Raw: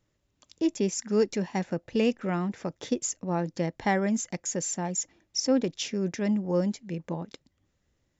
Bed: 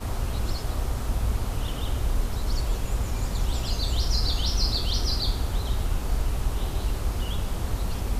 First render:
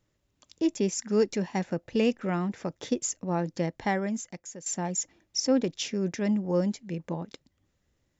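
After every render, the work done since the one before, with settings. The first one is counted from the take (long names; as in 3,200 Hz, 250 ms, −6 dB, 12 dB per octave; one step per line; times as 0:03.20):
0:03.64–0:04.66: fade out, to −15.5 dB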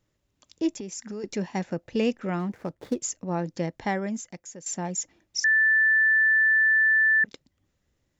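0:00.71–0:01.24: downward compressor 10 to 1, threshold −32 dBFS
0:02.39–0:02.99: running median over 15 samples
0:05.44–0:07.24: beep over 1,760 Hz −17 dBFS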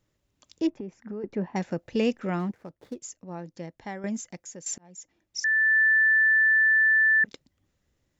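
0:00.67–0:01.56: low-pass filter 1,400 Hz
0:02.51–0:04.04: clip gain −9.5 dB
0:04.78–0:05.79: fade in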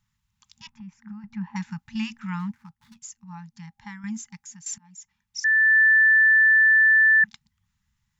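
brick-wall band-stop 230–810 Hz
dynamic equaliser 1,700 Hz, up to +5 dB, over −32 dBFS, Q 7.5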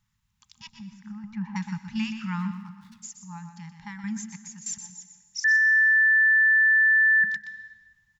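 on a send: single-tap delay 123 ms −9.5 dB
on the sum: dense smooth reverb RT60 1.3 s, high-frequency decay 0.9×, pre-delay 120 ms, DRR 13.5 dB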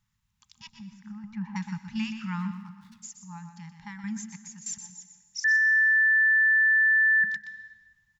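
level −2 dB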